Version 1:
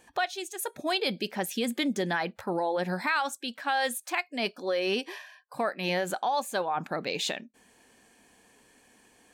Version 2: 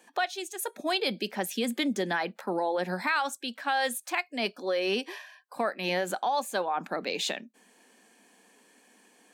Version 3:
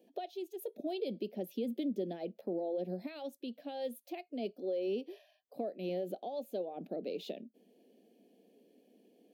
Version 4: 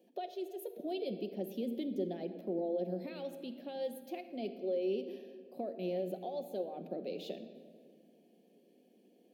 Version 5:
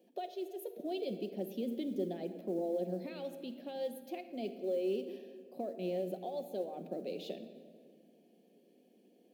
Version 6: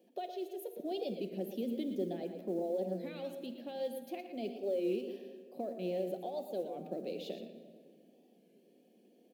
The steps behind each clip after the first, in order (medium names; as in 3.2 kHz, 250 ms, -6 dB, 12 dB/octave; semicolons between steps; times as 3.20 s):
steep high-pass 180 Hz 48 dB/octave
FFT filter 110 Hz 0 dB, 420 Hz +5 dB, 670 Hz 0 dB, 950 Hz -25 dB, 1.5 kHz -28 dB, 2.9 kHz -10 dB, 4.8 kHz -13 dB, 8 kHz -25 dB, 14 kHz -3 dB; compression 1.5:1, threshold -40 dBFS, peak gain reduction 7 dB; trim -3 dB
reverberation RT60 2.0 s, pre-delay 6 ms, DRR 7 dB; trim -1.5 dB
modulation noise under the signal 34 dB
on a send: delay 116 ms -10 dB; on the sum: warped record 33 1/3 rpm, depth 100 cents